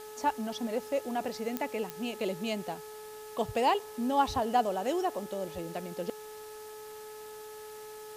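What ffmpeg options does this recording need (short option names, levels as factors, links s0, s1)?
-af "adeclick=t=4,bandreject=f=428.1:t=h:w=4,bandreject=f=856.2:t=h:w=4,bandreject=f=1284.3:t=h:w=4,bandreject=f=1712.4:t=h:w=4,afwtdn=0.0025"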